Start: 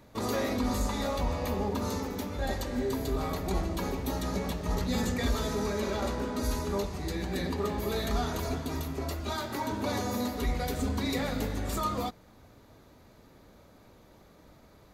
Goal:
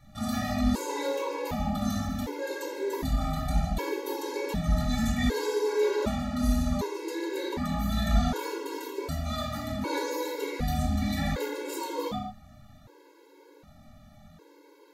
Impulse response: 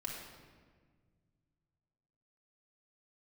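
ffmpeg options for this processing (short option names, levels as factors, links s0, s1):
-filter_complex "[1:a]atrim=start_sample=2205,afade=t=out:st=0.38:d=0.01,atrim=end_sample=17199,asetrate=61740,aresample=44100[s0];[0:a][s0]afir=irnorm=-1:irlink=0,afftfilt=real='re*gt(sin(2*PI*0.66*pts/sr)*(1-2*mod(floor(b*sr/1024/280),2)),0)':imag='im*gt(sin(2*PI*0.66*pts/sr)*(1-2*mod(floor(b*sr/1024/280),2)),0)':win_size=1024:overlap=0.75,volume=2.37"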